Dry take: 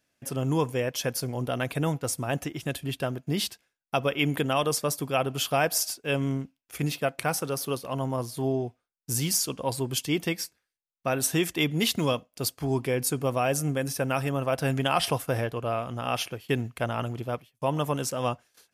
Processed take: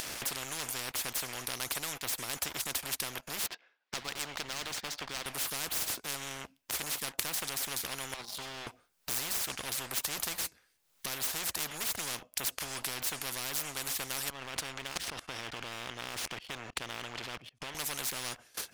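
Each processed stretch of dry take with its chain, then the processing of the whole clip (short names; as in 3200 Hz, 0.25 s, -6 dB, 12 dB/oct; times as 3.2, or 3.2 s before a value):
3.46–5.26 BPF 480–3800 Hz + air absorption 110 m
8.14–8.67 double band-pass 1800 Hz, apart 2.2 oct + comb 5 ms, depth 50%
14.3–17.75 LPF 4800 Hz + level quantiser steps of 22 dB
whole clip: upward compressor, threshold -29 dBFS; sample leveller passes 2; spectral compressor 10:1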